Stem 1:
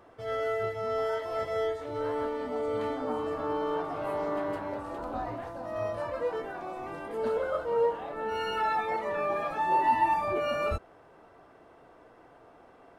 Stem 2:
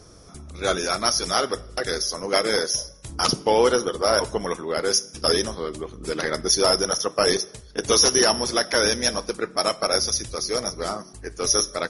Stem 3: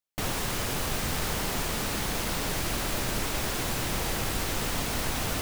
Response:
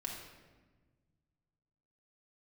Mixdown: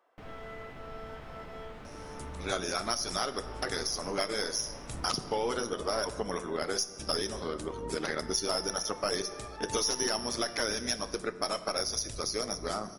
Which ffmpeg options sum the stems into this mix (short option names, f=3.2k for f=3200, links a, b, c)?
-filter_complex "[0:a]highpass=570,volume=-15dB,asplit=2[a][b];[b]volume=-5.5dB[c];[1:a]bandreject=f=500:w=12,tremolo=f=110:d=0.462,aeval=exprs='0.501*(cos(1*acos(clip(val(0)/0.501,-1,1)))-cos(1*PI/2))+0.00891*(cos(8*acos(clip(val(0)/0.501,-1,1)))-cos(8*PI/2))':c=same,adelay=1850,volume=-2.5dB,asplit=2[d][e];[e]volume=-10.5dB[f];[2:a]aemphasis=mode=reproduction:type=cd,acrossover=split=3400[g][h];[h]acompressor=threshold=-51dB:ratio=4:attack=1:release=60[i];[g][i]amix=inputs=2:normalize=0,highshelf=f=5.8k:g=-7.5,volume=-19.5dB,asplit=2[j][k];[k]volume=-4.5dB[l];[3:a]atrim=start_sample=2205[m];[c][f][l]amix=inputs=3:normalize=0[n];[n][m]afir=irnorm=-1:irlink=0[o];[a][d][j][o]amix=inputs=4:normalize=0,acompressor=threshold=-30dB:ratio=3"